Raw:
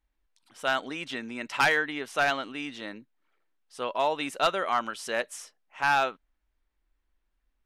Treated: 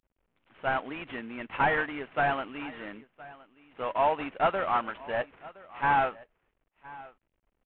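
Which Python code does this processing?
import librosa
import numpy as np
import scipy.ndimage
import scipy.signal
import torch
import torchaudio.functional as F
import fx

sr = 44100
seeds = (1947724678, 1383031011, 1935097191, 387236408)

y = fx.cvsd(x, sr, bps=16000)
y = fx.dynamic_eq(y, sr, hz=820.0, q=1.3, threshold_db=-37.0, ratio=4.0, max_db=5)
y = y + 10.0 ** (-20.5 / 20.0) * np.pad(y, (int(1017 * sr / 1000.0), 0))[:len(y)]
y = y * 10.0 ** (-1.5 / 20.0)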